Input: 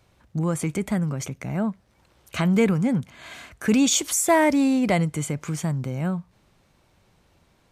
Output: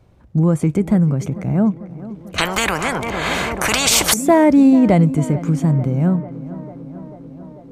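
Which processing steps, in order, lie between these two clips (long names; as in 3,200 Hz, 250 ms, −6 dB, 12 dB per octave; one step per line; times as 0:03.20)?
tilt shelving filter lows +7.5 dB
tape delay 444 ms, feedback 83%, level −15 dB, low-pass 2,000 Hz
0:02.38–0:04.14: every bin compressed towards the loudest bin 10 to 1
level +3 dB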